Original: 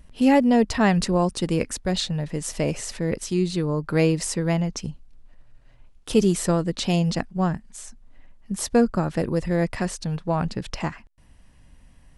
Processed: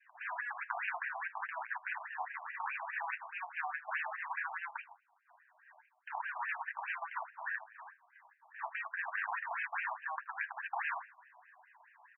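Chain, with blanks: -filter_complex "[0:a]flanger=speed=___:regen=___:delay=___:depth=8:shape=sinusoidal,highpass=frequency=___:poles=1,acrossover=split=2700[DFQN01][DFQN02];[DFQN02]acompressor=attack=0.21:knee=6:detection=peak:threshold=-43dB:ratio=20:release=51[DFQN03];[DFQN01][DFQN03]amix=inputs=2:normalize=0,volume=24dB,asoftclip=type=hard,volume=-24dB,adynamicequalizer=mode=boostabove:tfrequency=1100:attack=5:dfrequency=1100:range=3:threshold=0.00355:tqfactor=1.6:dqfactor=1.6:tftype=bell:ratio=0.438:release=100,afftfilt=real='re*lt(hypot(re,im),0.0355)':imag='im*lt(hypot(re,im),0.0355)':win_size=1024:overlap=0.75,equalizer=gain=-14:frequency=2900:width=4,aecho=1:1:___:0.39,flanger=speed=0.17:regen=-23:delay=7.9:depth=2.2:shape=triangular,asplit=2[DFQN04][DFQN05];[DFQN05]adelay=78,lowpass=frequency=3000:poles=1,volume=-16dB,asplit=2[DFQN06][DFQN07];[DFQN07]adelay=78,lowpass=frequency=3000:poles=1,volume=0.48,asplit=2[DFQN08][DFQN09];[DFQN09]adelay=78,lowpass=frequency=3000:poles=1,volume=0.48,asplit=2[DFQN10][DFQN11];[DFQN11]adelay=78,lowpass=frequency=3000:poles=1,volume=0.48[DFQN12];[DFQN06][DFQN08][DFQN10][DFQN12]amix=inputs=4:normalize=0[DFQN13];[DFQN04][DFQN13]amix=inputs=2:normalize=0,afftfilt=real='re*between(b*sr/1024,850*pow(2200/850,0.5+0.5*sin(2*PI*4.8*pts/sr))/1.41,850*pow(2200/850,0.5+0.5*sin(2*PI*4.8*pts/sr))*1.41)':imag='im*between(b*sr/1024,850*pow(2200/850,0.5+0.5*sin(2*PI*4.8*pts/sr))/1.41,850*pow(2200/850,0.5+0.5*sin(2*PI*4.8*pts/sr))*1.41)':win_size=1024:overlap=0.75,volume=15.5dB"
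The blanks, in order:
0.86, -11, 1.3, 67, 1.2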